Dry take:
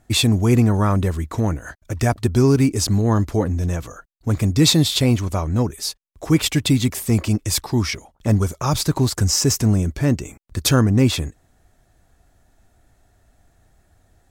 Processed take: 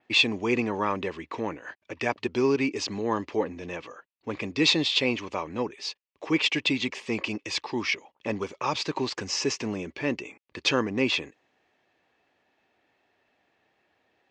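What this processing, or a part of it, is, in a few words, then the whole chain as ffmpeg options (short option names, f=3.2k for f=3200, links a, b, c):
phone earpiece: -af "highpass=450,equalizer=f=680:t=q:w=4:g=-9,equalizer=f=1.4k:t=q:w=4:g=-9,equalizer=f=2.6k:t=q:w=4:g=6,equalizer=f=3.8k:t=q:w=4:g=-4,lowpass=f=4k:w=0.5412,lowpass=f=4k:w=1.3066,adynamicequalizer=threshold=0.00355:dfrequency=6800:dqfactor=1.8:tfrequency=6800:tqfactor=1.8:attack=5:release=100:ratio=0.375:range=3:mode=boostabove:tftype=bell"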